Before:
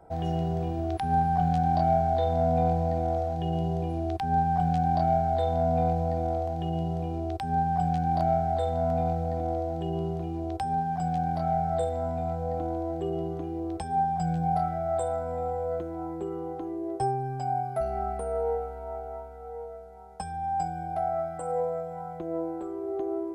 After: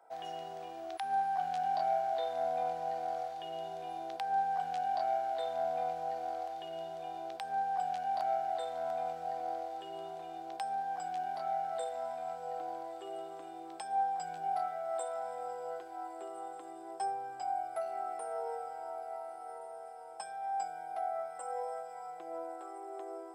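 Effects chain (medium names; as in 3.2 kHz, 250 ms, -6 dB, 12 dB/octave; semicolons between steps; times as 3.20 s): high-pass 860 Hz 12 dB/octave; echo that smears into a reverb 1425 ms, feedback 51%, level -11 dB; trim -2.5 dB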